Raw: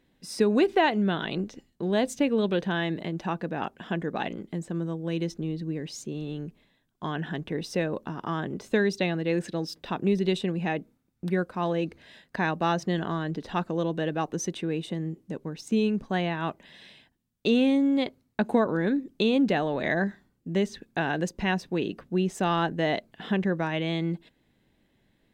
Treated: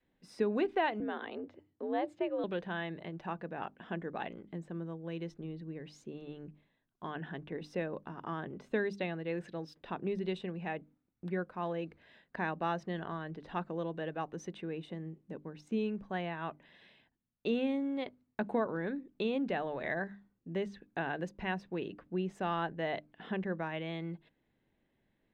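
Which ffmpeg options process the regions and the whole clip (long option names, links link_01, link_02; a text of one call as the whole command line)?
ffmpeg -i in.wav -filter_complex "[0:a]asettb=1/sr,asplit=3[link_01][link_02][link_03];[link_01]atrim=end=1.004[link_04];[link_02]atrim=start=1:end=2.44,asetpts=PTS-STARTPTS,afade=type=in:duration=0.004:curve=qsin,afade=type=out:start_time=1.436:duration=0.004:curve=qsin,aemphasis=mode=reproduction:type=75kf,bandreject=frequency=5900:width=5.6,afreqshift=72[link_05];[link_03]atrim=start=2.436[link_06];[link_04][link_05]acrossfade=duration=0.004:curve1=hsin:curve2=qsin[link_07];[link_07][link_06]acrossfade=duration=0.004:curve1=qsin:curve2=hsin,bass=frequency=250:gain=-2,treble=frequency=4000:gain=-15,bandreject=frequency=50:width_type=h:width=6,bandreject=frequency=100:width_type=h:width=6,bandreject=frequency=150:width_type=h:width=6,bandreject=frequency=200:width_type=h:width=6,bandreject=frequency=250:width_type=h:width=6,bandreject=frequency=300:width_type=h:width=6,adynamicequalizer=threshold=0.0112:dfrequency=270:dqfactor=1.2:tfrequency=270:tqfactor=1.2:attack=5:release=100:ratio=0.375:range=3:mode=cutabove:tftype=bell,volume=-7.5dB" out.wav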